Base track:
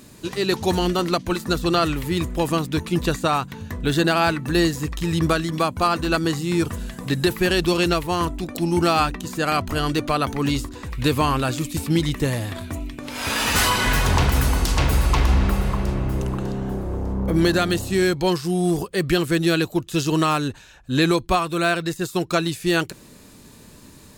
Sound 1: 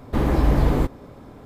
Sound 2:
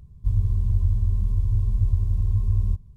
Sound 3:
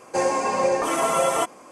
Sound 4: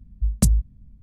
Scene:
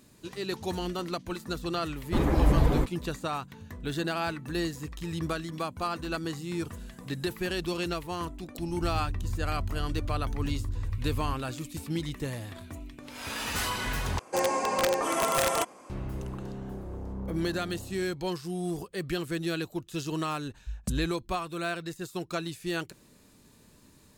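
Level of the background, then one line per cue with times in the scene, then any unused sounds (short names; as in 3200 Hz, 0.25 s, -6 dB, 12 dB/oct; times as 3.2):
base track -12 dB
1.99 add 1 -2.5 dB + per-bin expansion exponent 1.5
8.58 add 2 -11.5 dB + three-band squash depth 70%
14.19 replace with 3 -5 dB + wrapped overs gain 13 dB
20.45 add 4 -14.5 dB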